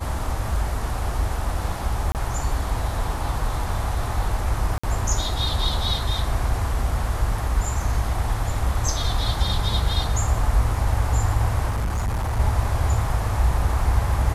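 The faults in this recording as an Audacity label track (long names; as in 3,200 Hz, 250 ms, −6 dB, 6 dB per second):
2.120000	2.150000	drop-out 28 ms
4.780000	4.830000	drop-out 55 ms
11.690000	12.400000	clipping −20.5 dBFS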